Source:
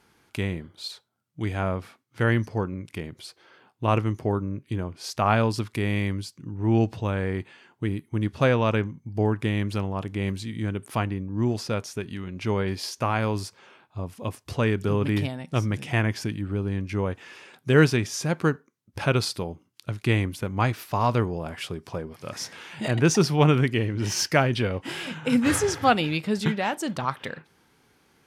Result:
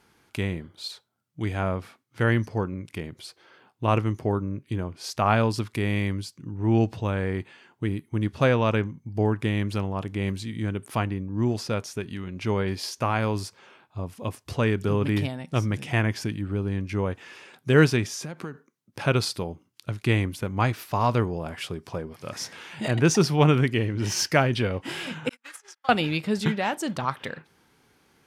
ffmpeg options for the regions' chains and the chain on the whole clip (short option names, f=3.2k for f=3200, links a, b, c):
-filter_complex "[0:a]asettb=1/sr,asplit=3[a][b][c];[a]atrim=end=18.094[d];[b]atrim=start=18.09:end=19.05,asetpts=PTS-STARTPTS,afade=t=in:d=0.004:c=qsin,afade=t=out:st=0.956:d=0.004:c=qsin,highpass=f=120:w=0.5412,highpass=f=120:w=1.3066,acompressor=threshold=-30dB:ratio=10:attack=3.2:release=140:knee=1:detection=peak[e];[c]atrim=start=19.046[f];[d][e]acrossfade=d=0.004:c1=hsin:c2=qsin[g];[g][f]acrossfade=d=0.004:c1=qsin:c2=hsin,asettb=1/sr,asplit=3[h][i][j];[h]atrim=end=25.294[k];[i]atrim=start=25.29:end=25.89,asetpts=PTS-STARTPTS,afade=t=in:d=0.004:c=qsin,afade=t=out:st=0.596:d=0.004:c=qsin,highpass=1.1k,acompressor=threshold=-31dB:ratio=16:attack=3.2:release=140:knee=1:detection=peak,agate=range=-44dB:threshold=-35dB:ratio=16:release=100:detection=peak[l];[j]atrim=start=25.886[m];[k][l]acrossfade=d=0.004:c1=hsin:c2=qsin[n];[n][m]acrossfade=d=0.004:c1=qsin:c2=hsin"